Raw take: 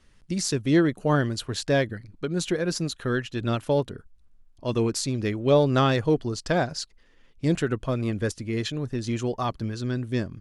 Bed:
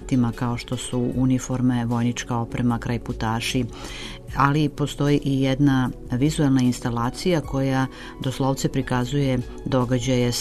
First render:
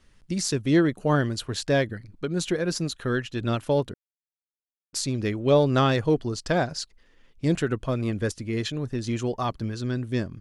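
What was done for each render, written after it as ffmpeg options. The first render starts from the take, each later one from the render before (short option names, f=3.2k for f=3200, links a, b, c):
-filter_complex "[0:a]asplit=3[a][b][c];[a]atrim=end=3.94,asetpts=PTS-STARTPTS,afade=t=out:st=3.936:d=0.004:c=hsin[d];[b]atrim=start=3.94:end=4.93,asetpts=PTS-STARTPTS,volume=0[e];[c]atrim=start=4.93,asetpts=PTS-STARTPTS,afade=t=in:d=0.004:c=hsin[f];[d][e][f]concat=n=3:v=0:a=1"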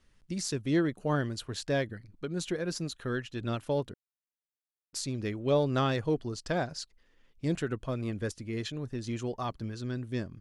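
-af "volume=-7dB"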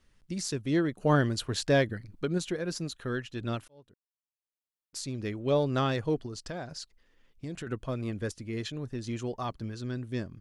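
-filter_complex "[0:a]asplit=3[a][b][c];[a]afade=t=out:st=1.01:d=0.02[d];[b]acontrast=35,afade=t=in:st=1.01:d=0.02,afade=t=out:st=2.37:d=0.02[e];[c]afade=t=in:st=2.37:d=0.02[f];[d][e][f]amix=inputs=3:normalize=0,asettb=1/sr,asplit=3[g][h][i];[g]atrim=end=6.264[j];[h]atrim=start=6.26:end=7.67,asetpts=PTS-STARTPTS,afade=t=in:d=0.004:c=qsin,afade=t=out:st=1.406:d=0.004:c=qsin,acompressor=threshold=-36dB:ratio=3:attack=3.2:release=140:knee=1:detection=peak[k];[i]atrim=start=7.666[l];[j][k]acrossfade=d=0.004:c1=hsin:c2=qsin[m];[m][l]acrossfade=d=0.004:c1=qsin:c2=hsin,asplit=2[n][o];[n]atrim=end=3.68,asetpts=PTS-STARTPTS,afade=t=out:st=3.676:d=0.004:c=hsin[p];[o]atrim=start=3.68,asetpts=PTS-STARTPTS,afade=t=in:d=1.7[q];[p][q]concat=n=2:v=0:a=1"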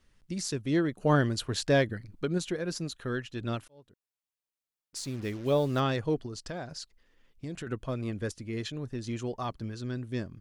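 -filter_complex "[0:a]asettb=1/sr,asplit=3[a][b][c];[a]atrim=end=4.974[d];[b]atrim=start=4.97:end=5.8,asetpts=PTS-STARTPTS,afade=t=in:d=0.004:c=qsin,afade=t=out:st=0.826:d=0.004:c=qsin,acrusher=bits=7:mix=0:aa=0.5[e];[c]atrim=start=5.796[f];[d][e]acrossfade=d=0.004:c1=hsin:c2=qsin[g];[g][f]acrossfade=d=0.004:c1=qsin:c2=hsin"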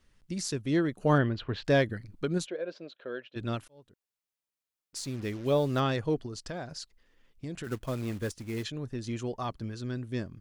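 -filter_complex "[0:a]asettb=1/sr,asplit=3[a][b][c];[a]atrim=end=1.184[d];[b]atrim=start=1.18:end=1.65,asetpts=PTS-STARTPTS,afade=t=in:d=0.004:c=qsin,afade=t=out:st=0.466:d=0.004:c=qsin,lowpass=f=3.3k:w=0.5412,lowpass=f=3.3k:w=1.3066[e];[c]atrim=start=1.646[f];[d][e]acrossfade=d=0.004:c1=hsin:c2=qsin[g];[g][f]acrossfade=d=0.004:c1=qsin:c2=hsin,asplit=3[h][i][j];[h]afade=t=out:st=2.45:d=0.02[k];[i]highpass=470,equalizer=f=560:t=q:w=4:g=8,equalizer=f=850:t=q:w=4:g=-7,equalizer=f=1.2k:t=q:w=4:g=-9,equalizer=f=1.9k:t=q:w=4:g=-9,equalizer=f=2.8k:t=q:w=4:g=-4,lowpass=f=3.2k:w=0.5412,lowpass=f=3.2k:w=1.3066,afade=t=in:st=2.45:d=0.02,afade=t=out:st=3.35:d=0.02[l];[j]afade=t=in:st=3.35:d=0.02[m];[k][l][m]amix=inputs=3:normalize=0,asplit=3[n][o][p];[n]afade=t=out:st=7.63:d=0.02[q];[o]acrusher=bits=4:mode=log:mix=0:aa=0.000001,afade=t=in:st=7.63:d=0.02,afade=t=out:st=8.63:d=0.02[r];[p]afade=t=in:st=8.63:d=0.02[s];[q][r][s]amix=inputs=3:normalize=0"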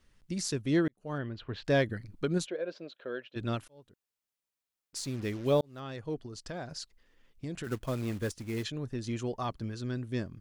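-filter_complex "[0:a]asplit=3[a][b][c];[a]atrim=end=0.88,asetpts=PTS-STARTPTS,afade=t=out:st=0.876:d=0.004:c=hsin[d];[b]atrim=start=0.88:end=5.61,asetpts=PTS-STARTPTS,afade=t=in:d=1.13,afade=t=out:st=4.726:d=0.004:c=hsin[e];[c]atrim=start=5.61,asetpts=PTS-STARTPTS,afade=t=in:d=1.15[f];[d][e][f]concat=n=3:v=0:a=1"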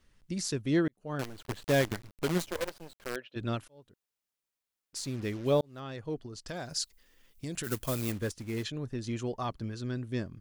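-filter_complex "[0:a]asettb=1/sr,asplit=3[a][b][c];[a]atrim=end=1.194[d];[b]atrim=start=1.19:end=3.16,asetpts=PTS-STARTPTS,afade=t=in:d=0.004:c=qsin,afade=t=out:st=1.966:d=0.004:c=qsin,acrusher=bits=6:dc=4:mix=0:aa=0.000001[e];[c]atrim=start=3.156[f];[d][e]acrossfade=d=0.004:c1=hsin:c2=qsin[g];[g][f]acrossfade=d=0.004:c1=qsin:c2=hsin,asettb=1/sr,asplit=3[h][i][j];[h]atrim=end=6.484[k];[i]atrim=start=6.48:end=8.12,asetpts=PTS-STARTPTS,afade=t=in:d=0.004:c=qsin,afade=t=out:st=1.636:d=0.004:c=qsin,aemphasis=mode=production:type=75kf[l];[j]atrim=start=8.116[m];[k][l]acrossfade=d=0.004:c1=hsin:c2=qsin[n];[n][m]acrossfade=d=0.004:c1=qsin:c2=hsin"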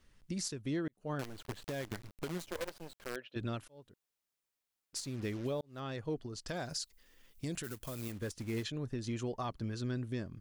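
-af "acompressor=threshold=-31dB:ratio=6,alimiter=level_in=4dB:limit=-24dB:level=0:latency=1:release=337,volume=-4dB"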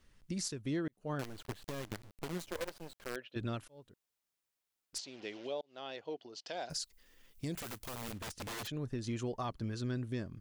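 -filter_complex "[0:a]asettb=1/sr,asplit=3[a][b][c];[a]atrim=end=1.534[d];[b]atrim=start=1.53:end=2.33,asetpts=PTS-STARTPTS,afade=t=in:d=0.004:c=qsin,afade=t=out:st=0.796:d=0.004:c=qsin,aeval=exprs='clip(val(0),-1,0.00335)':c=same[e];[c]atrim=start=2.326[f];[d][e]acrossfade=d=0.004:c1=hsin:c2=qsin[g];[g][f]acrossfade=d=0.004:c1=qsin:c2=hsin,asettb=1/sr,asplit=3[h][i][j];[h]atrim=end=4.984[k];[i]atrim=start=4.98:end=6.7,asetpts=PTS-STARTPTS,afade=t=in:d=0.004:c=qsin,afade=t=out:st=1.716:d=0.004:c=qsin,highpass=460,equalizer=f=720:t=q:w=4:g=4,equalizer=f=1.2k:t=q:w=4:g=-8,equalizer=f=1.7k:t=q:w=4:g=-4,equalizer=f=3k:t=q:w=4:g=6,lowpass=f=5.9k:w=0.5412,lowpass=f=5.9k:w=1.3066[l];[j]atrim=start=6.696[m];[k][l]acrossfade=d=0.004:c1=hsin:c2=qsin[n];[n][m]acrossfade=d=0.004:c1=qsin:c2=hsin,asplit=3[o][p][q];[o]afade=t=out:st=7.54:d=0.02[r];[p]aeval=exprs='(mod(70.8*val(0)+1,2)-1)/70.8':c=same,afade=t=in:st=7.54:d=0.02,afade=t=out:st=8.66:d=0.02[s];[q]afade=t=in:st=8.66:d=0.02[t];[r][s][t]amix=inputs=3:normalize=0"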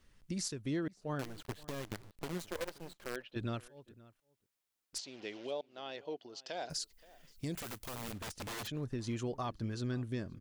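-filter_complex "[0:a]asplit=2[a][b];[b]adelay=524.8,volume=-21dB,highshelf=f=4k:g=-11.8[c];[a][c]amix=inputs=2:normalize=0"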